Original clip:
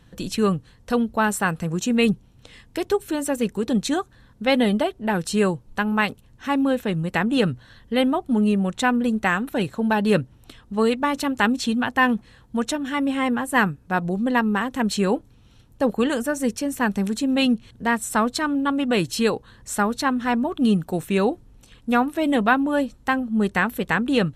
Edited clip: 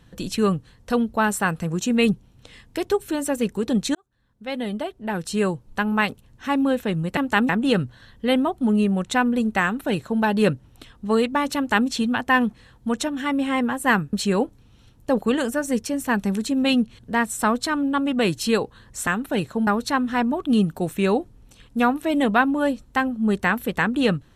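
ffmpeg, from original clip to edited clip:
ffmpeg -i in.wav -filter_complex "[0:a]asplit=7[link_01][link_02][link_03][link_04][link_05][link_06][link_07];[link_01]atrim=end=3.95,asetpts=PTS-STARTPTS,afade=type=out:start_time=3.946:duration=0.004:curve=hsin[link_08];[link_02]atrim=start=3.95:end=7.172,asetpts=PTS-STARTPTS,afade=type=in:duration=1.86[link_09];[link_03]atrim=start=11.238:end=11.562[link_10];[link_04]atrim=start=7.168:end=13.812[link_11];[link_05]atrim=start=14.848:end=19.792[link_12];[link_06]atrim=start=9.298:end=9.902[link_13];[link_07]atrim=start=19.788[link_14];[link_08][link_09]concat=n=2:v=0:a=1[link_15];[link_15][link_10]acrossfade=duration=0.004:curve1=hsin:curve2=hsin[link_16];[link_16][link_11]acrossfade=duration=0.004:curve1=hsin:curve2=hsin[link_17];[link_17][link_12]acrossfade=duration=0.004:curve1=hsin:curve2=hsin[link_18];[link_18][link_13]acrossfade=duration=0.004:curve1=hsin:curve2=hsin[link_19];[link_19][link_14]acrossfade=duration=0.004:curve1=hsin:curve2=hsin" out.wav

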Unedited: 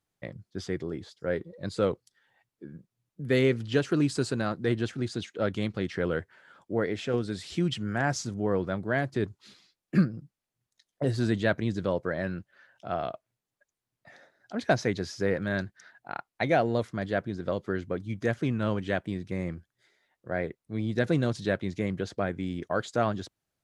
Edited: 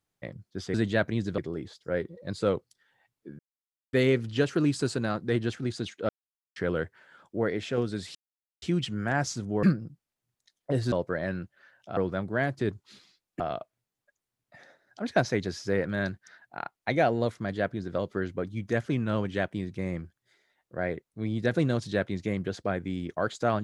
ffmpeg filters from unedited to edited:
ffmpeg -i in.wav -filter_complex "[0:a]asplit=12[link_01][link_02][link_03][link_04][link_05][link_06][link_07][link_08][link_09][link_10][link_11][link_12];[link_01]atrim=end=0.742[link_13];[link_02]atrim=start=11.238:end=11.882[link_14];[link_03]atrim=start=0.738:end=2.75,asetpts=PTS-STARTPTS,afade=type=out:start_time=2.008:duration=0.004:curve=hsin[link_15];[link_04]atrim=start=2.75:end=3.29,asetpts=PTS-STARTPTS,volume=0[link_16];[link_05]atrim=start=3.29:end=5.45,asetpts=PTS-STARTPTS,afade=type=in:duration=0.004:curve=hsin,afade=type=out:start_time=2.156:duration=0.004:curve=hsin[link_17];[link_06]atrim=start=5.45:end=5.92,asetpts=PTS-STARTPTS,volume=0[link_18];[link_07]atrim=start=5.92:end=7.51,asetpts=PTS-STARTPTS,afade=type=in:duration=0.004:curve=hsin,afade=type=out:start_time=1.586:duration=0.004:curve=hsin,apad=pad_dur=0.47[link_19];[link_08]atrim=start=7.51:end=8.522,asetpts=PTS-STARTPTS,afade=type=in:duration=0.004:curve=hsin[link_20];[link_09]atrim=start=9.948:end=11.242[link_21];[link_10]atrim=start=11.878:end=12.932[link_22];[link_11]atrim=start=8.518:end=9.952[link_23];[link_12]atrim=start=12.928[link_24];[link_13][link_14]acrossfade=duration=0.004:curve1=hsin:curve2=hsin[link_25];[link_15][link_16][link_17][link_18][link_19][link_20]concat=n=6:v=0:a=1[link_26];[link_25][link_26]acrossfade=duration=0.004:curve1=hsin:curve2=hsin[link_27];[link_27][link_21]acrossfade=duration=0.004:curve1=hsin:curve2=hsin[link_28];[link_28][link_22]acrossfade=duration=0.004:curve1=hsin:curve2=hsin[link_29];[link_29][link_23]acrossfade=duration=0.004:curve1=hsin:curve2=hsin[link_30];[link_30][link_24]acrossfade=duration=0.004:curve1=hsin:curve2=hsin" out.wav

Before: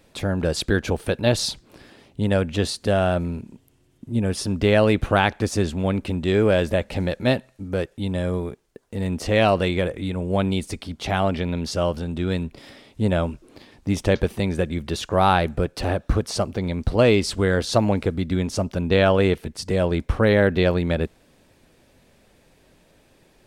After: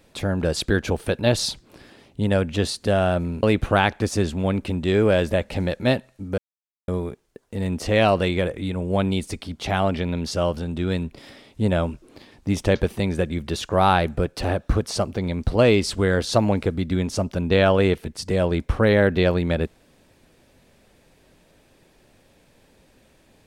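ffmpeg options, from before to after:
ffmpeg -i in.wav -filter_complex "[0:a]asplit=4[link_01][link_02][link_03][link_04];[link_01]atrim=end=3.432[link_05];[link_02]atrim=start=4.828:end=7.78,asetpts=PTS-STARTPTS,afade=type=out:start_time=2.948:duration=0.004:curve=hsin[link_06];[link_03]atrim=start=7.78:end=8.28,asetpts=PTS-STARTPTS,volume=0[link_07];[link_04]atrim=start=8.28,asetpts=PTS-STARTPTS,afade=type=in:duration=0.004:curve=hsin[link_08];[link_06][link_07][link_08]concat=n=3:v=0:a=1[link_09];[link_05][link_09]acrossfade=duration=0.004:curve1=hsin:curve2=hsin" out.wav

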